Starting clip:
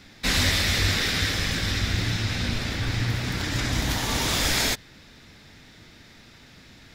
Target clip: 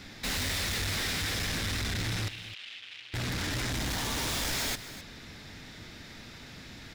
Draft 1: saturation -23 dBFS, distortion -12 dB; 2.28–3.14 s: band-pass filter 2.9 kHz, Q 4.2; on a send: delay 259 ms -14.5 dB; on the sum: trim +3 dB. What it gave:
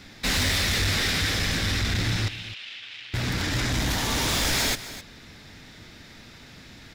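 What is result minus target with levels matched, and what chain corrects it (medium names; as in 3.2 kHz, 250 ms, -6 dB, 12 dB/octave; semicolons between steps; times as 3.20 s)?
saturation: distortion -7 dB
saturation -33.5 dBFS, distortion -5 dB; 2.28–3.14 s: band-pass filter 2.9 kHz, Q 4.2; on a send: delay 259 ms -14.5 dB; on the sum: trim +3 dB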